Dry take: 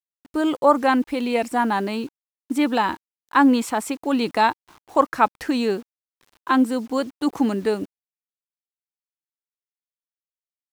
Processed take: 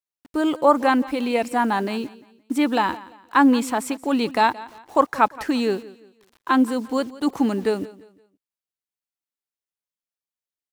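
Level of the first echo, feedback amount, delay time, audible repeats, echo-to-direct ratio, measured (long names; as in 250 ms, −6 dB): −19.0 dB, 34%, 173 ms, 2, −18.5 dB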